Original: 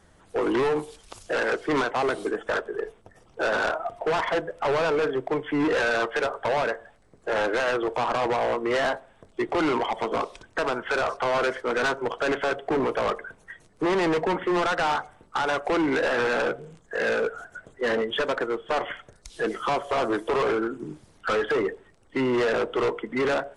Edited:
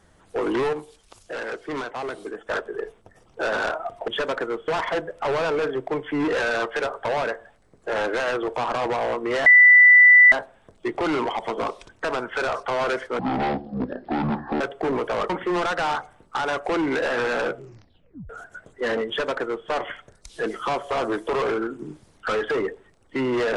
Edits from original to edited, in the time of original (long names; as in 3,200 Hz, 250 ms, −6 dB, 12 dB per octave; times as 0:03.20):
0:00.73–0:02.50: clip gain −6 dB
0:08.86: insert tone 1,980 Hz −8 dBFS 0.86 s
0:11.73–0:12.48: play speed 53%
0:13.17–0:14.30: remove
0:16.55: tape stop 0.75 s
0:18.08–0:18.68: duplicate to 0:04.08